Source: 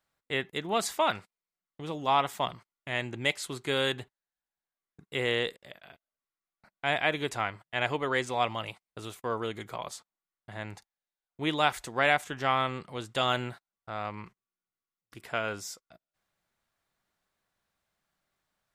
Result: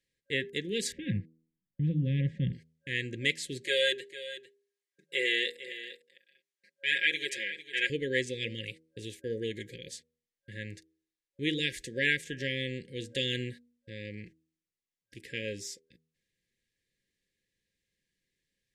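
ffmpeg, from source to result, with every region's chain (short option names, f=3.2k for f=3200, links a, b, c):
-filter_complex "[0:a]asettb=1/sr,asplit=3[a][b][c];[a]atrim=end=0.924[d];[b]atrim=start=0.92:end=2.53,asetpts=PTS-STARTPTS,afade=t=in:d=0.004:c=qsin,afade=t=out:st=1.606:d=0.004:c=qsin,lowpass=1.5k,lowshelf=f=250:t=q:w=1.5:g=13,bandreject=f=450:w=5.5[e];[c]atrim=start=2.526[f];[d][e]acrossfade=d=0.004:c1=hsin:c2=qsin[g];[g][f]acrossfade=d=0.004:c1=qsin:c2=hsin,asettb=1/sr,asplit=3[h][i][j];[h]atrim=end=3.624[k];[i]atrim=start=3.62:end=7.9,asetpts=PTS-STARTPTS,afade=t=in:d=0.004:c=qsin,afade=t=out:st=4.276:d=0.004:c=qsin,highpass=520,aecho=1:1:5.5:0.99,atrim=end_sample=188748,aecho=1:1:451:0.2,atrim=end_sample=188748[l];[j]atrim=start=7.896[m];[k][l]acrossfade=d=0.004:c1=hsin:c2=qsin[n];[n][m]acrossfade=d=0.004:c1=qsin:c2=hsin,bandreject=f=80.19:t=h:w=4,bandreject=f=160.38:t=h:w=4,bandreject=f=240.57:t=h:w=4,bandreject=f=320.76:t=h:w=4,bandreject=f=400.95:t=h:w=4,bandreject=f=481.14:t=h:w=4,bandreject=f=561.33:t=h:w=4,bandreject=f=641.52:t=h:w=4,bandreject=f=721.71:t=h:w=4,bandreject=f=801.9:t=h:w=4,bandreject=f=882.09:t=h:w=4,bandreject=f=962.28:t=h:w=4,bandreject=f=1.04247k:t=h:w=4,bandreject=f=1.12266k:t=h:w=4,afftfilt=real='re*(1-between(b*sr/4096,550,1600))':imag='im*(1-between(b*sr/4096,550,1600))':win_size=4096:overlap=0.75,lowpass=9.8k"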